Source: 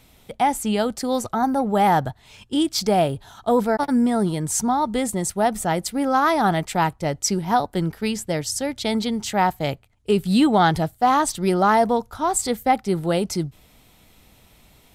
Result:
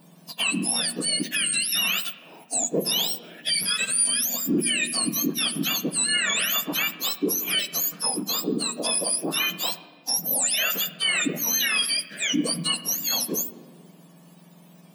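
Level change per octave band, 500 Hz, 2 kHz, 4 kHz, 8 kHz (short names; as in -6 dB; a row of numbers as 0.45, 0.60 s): -12.0, +2.5, +8.5, +6.0 dB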